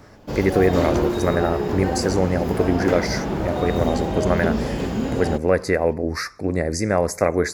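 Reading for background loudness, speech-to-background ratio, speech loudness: −24.5 LKFS, 2.0 dB, −22.5 LKFS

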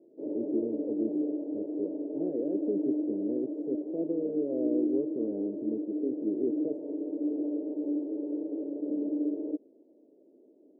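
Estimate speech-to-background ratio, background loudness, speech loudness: −2.0 dB, −33.5 LKFS, −35.5 LKFS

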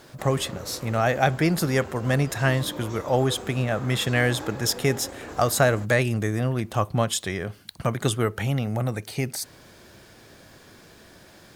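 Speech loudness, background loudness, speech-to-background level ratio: −25.0 LKFS, −39.0 LKFS, 14.0 dB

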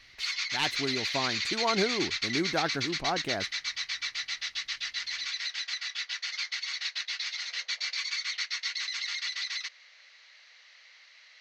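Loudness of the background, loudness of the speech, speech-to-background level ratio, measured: −31.5 LKFS, −32.5 LKFS, −1.0 dB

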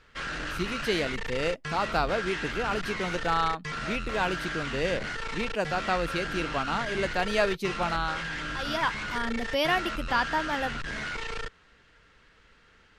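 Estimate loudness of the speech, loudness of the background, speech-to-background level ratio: −30.0 LKFS, −34.0 LKFS, 4.0 dB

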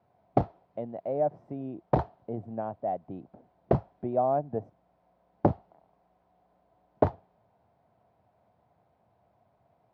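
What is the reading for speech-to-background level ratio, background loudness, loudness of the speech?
−2.5 dB, −30.5 LKFS, −33.0 LKFS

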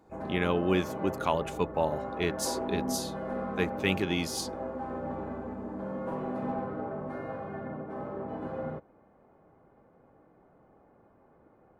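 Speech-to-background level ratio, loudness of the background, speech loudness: 5.5 dB, −37.0 LKFS, −31.5 LKFS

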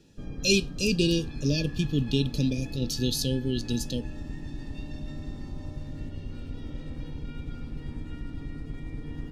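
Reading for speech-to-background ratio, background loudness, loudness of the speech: 12.0 dB, −39.5 LKFS, −27.5 LKFS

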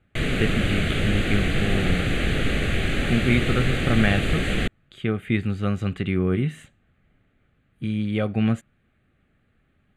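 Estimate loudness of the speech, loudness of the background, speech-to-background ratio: −25.5 LKFS, −24.5 LKFS, −1.0 dB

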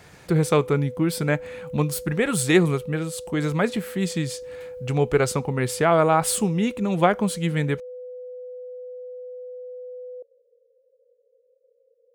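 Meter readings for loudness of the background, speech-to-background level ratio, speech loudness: −38.0 LKFS, 15.0 dB, −23.0 LKFS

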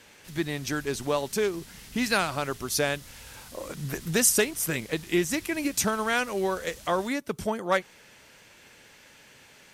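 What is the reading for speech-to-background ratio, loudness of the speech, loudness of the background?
19.0 dB, −27.5 LKFS, −46.5 LKFS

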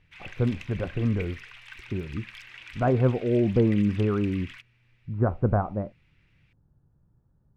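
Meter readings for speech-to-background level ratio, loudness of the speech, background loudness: 17.5 dB, −26.5 LKFS, −44.0 LKFS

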